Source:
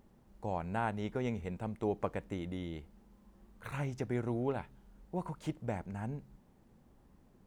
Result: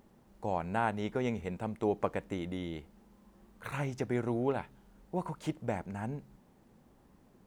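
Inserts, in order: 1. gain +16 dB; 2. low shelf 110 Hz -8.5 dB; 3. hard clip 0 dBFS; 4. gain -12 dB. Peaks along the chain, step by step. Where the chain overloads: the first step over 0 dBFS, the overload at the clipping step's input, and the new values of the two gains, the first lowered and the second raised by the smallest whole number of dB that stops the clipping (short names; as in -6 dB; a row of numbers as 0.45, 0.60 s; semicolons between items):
-2.5, -2.5, -2.5, -14.5 dBFS; no overload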